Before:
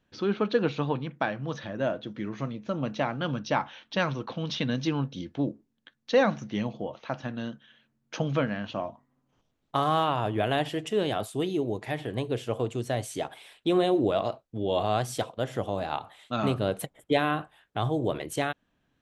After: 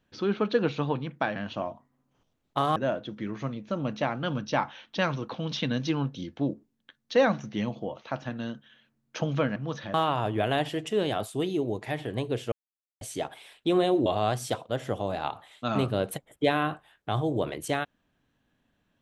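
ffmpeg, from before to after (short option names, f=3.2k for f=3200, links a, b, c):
-filter_complex "[0:a]asplit=8[a][b][c][d][e][f][g][h];[a]atrim=end=1.362[i];[b]atrim=start=8.538:end=9.942[j];[c]atrim=start=1.738:end=8.542[k];[d]atrim=start=1.358:end=1.742[l];[e]atrim=start=9.938:end=12.52,asetpts=PTS-STARTPTS,afade=t=out:st=2.578:d=0.004:c=hsin[m];[f]atrim=start=12.52:end=13.01,asetpts=PTS-STARTPTS,volume=0[n];[g]atrim=start=13.01:end=14.062,asetpts=PTS-STARTPTS,afade=t=in:d=0.004:c=hsin[o];[h]atrim=start=14.738[p];[i][j]acrossfade=d=0.004:c1=hsin:c2=hsin[q];[q][k]acrossfade=d=0.004:c1=hsin:c2=hsin[r];[r][l]acrossfade=d=0.004:c1=hsin:c2=hsin[s];[m][n][o]concat=n=3:v=0:a=1[t];[s][t]acrossfade=d=0.004:c1=hsin:c2=hsin[u];[u][p]acrossfade=d=0.004:c1=hsin:c2=hsin"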